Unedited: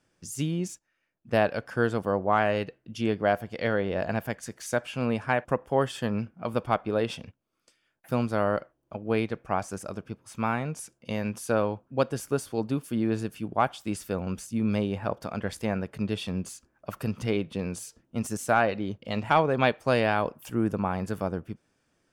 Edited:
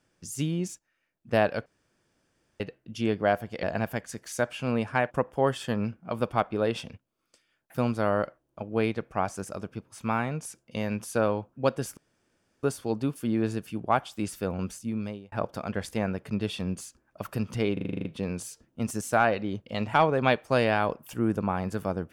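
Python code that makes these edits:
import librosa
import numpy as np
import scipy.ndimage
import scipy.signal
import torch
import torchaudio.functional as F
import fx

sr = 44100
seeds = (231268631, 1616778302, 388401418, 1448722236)

y = fx.edit(x, sr, fx.room_tone_fill(start_s=1.66, length_s=0.94),
    fx.cut(start_s=3.63, length_s=0.34),
    fx.insert_room_tone(at_s=12.31, length_s=0.66),
    fx.fade_out_span(start_s=14.36, length_s=0.64),
    fx.stutter(start_s=17.41, slice_s=0.04, count=9), tone=tone)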